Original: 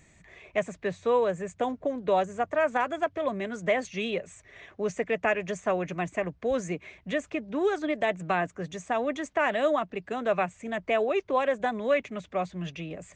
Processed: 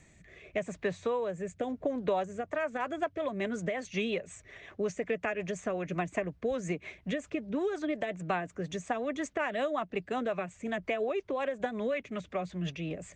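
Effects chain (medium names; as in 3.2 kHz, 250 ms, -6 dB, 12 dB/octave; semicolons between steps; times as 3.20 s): compression 5:1, threshold -29 dBFS, peak gain reduction 9 dB; rotary cabinet horn 0.85 Hz, later 5.5 Hz, at 2.11 s; trim +2.5 dB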